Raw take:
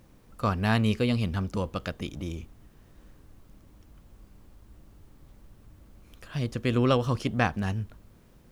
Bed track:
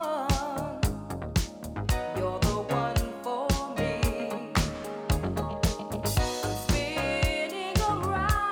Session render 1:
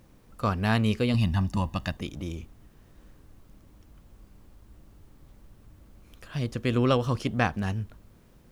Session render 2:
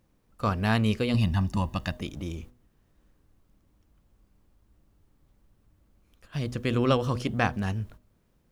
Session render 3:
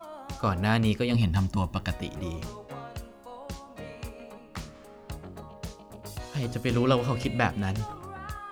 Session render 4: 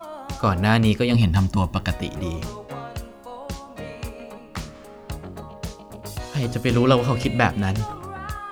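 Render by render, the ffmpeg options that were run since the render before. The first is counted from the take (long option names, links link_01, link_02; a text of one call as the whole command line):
ffmpeg -i in.wav -filter_complex "[0:a]asettb=1/sr,asplit=3[link_01][link_02][link_03];[link_01]atrim=end=1.144[link_04];[link_02]atrim=start=1.14:end=1.97,asetpts=PTS-STARTPTS,afade=type=in:duration=0.004:curve=qsin,afade=type=out:start_time=0.826:duration=0.004:curve=qsin,aecho=1:1:1.1:0.86,atrim=end_sample=36603[link_05];[link_03]atrim=start=1.966[link_06];[link_04][link_05]acrossfade=duration=0.004:curve1=hsin:curve2=qsin[link_07];[link_07][link_06]acrossfade=duration=0.004:curve1=qsin:curve2=hsin" out.wav
ffmpeg -i in.wav -af "agate=range=-11dB:threshold=-44dB:ratio=16:detection=peak,bandreject=frequency=123.5:width_type=h:width=4,bandreject=frequency=247:width_type=h:width=4,bandreject=frequency=370.5:width_type=h:width=4,bandreject=frequency=494:width_type=h:width=4,bandreject=frequency=617.5:width_type=h:width=4" out.wav
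ffmpeg -i in.wav -i bed.wav -filter_complex "[1:a]volume=-13dB[link_01];[0:a][link_01]amix=inputs=2:normalize=0" out.wav
ffmpeg -i in.wav -af "volume=6.5dB" out.wav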